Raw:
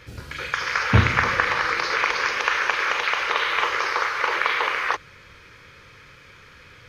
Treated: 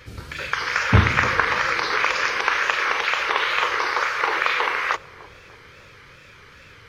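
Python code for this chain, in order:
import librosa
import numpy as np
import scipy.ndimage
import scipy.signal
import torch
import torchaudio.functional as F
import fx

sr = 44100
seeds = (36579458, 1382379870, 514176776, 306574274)

y = fx.echo_banded(x, sr, ms=299, feedback_pct=66, hz=400.0, wet_db=-16)
y = fx.wow_flutter(y, sr, seeds[0], rate_hz=2.1, depth_cents=110.0)
y = y * librosa.db_to_amplitude(1.0)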